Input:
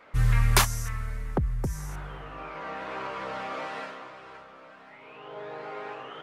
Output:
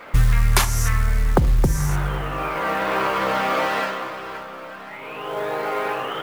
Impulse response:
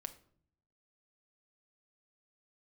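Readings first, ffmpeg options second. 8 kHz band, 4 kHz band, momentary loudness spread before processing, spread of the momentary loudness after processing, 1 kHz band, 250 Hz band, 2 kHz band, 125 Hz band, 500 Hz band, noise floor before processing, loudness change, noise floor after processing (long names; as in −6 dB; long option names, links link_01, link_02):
+5.0 dB, +5.5 dB, 24 LU, 14 LU, +11.0 dB, +10.5 dB, +9.0 dB, +7.0 dB, +12.0 dB, −50 dBFS, +8.0 dB, −37 dBFS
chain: -filter_complex "[0:a]acrusher=bits=6:mode=log:mix=0:aa=0.000001,asplit=2[link_01][link_02];[1:a]atrim=start_sample=2205[link_03];[link_02][link_03]afir=irnorm=-1:irlink=0,volume=7dB[link_04];[link_01][link_04]amix=inputs=2:normalize=0,acompressor=threshold=-18dB:ratio=12,volume=6dB"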